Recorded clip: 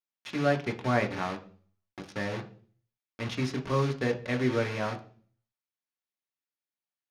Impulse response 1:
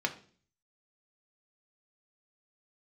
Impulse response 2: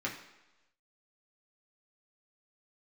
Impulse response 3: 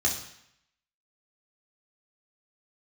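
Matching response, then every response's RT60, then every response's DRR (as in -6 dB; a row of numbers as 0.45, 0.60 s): 1; 0.45 s, not exponential, 0.70 s; 4.0, -3.5, -2.0 dB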